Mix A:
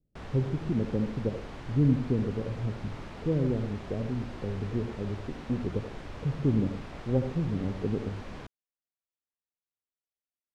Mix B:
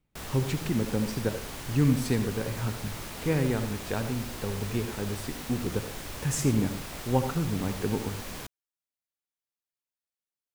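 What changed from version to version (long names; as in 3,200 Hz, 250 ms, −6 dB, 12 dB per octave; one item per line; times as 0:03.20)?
speech: remove Butterworth low-pass 640 Hz
master: remove head-to-tape spacing loss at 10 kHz 27 dB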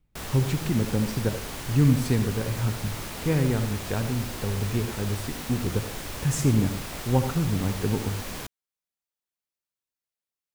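speech: add low-shelf EQ 110 Hz +12 dB
background +3.5 dB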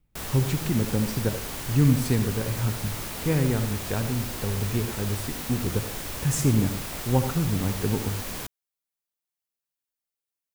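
master: add high-shelf EQ 9,400 Hz +6.5 dB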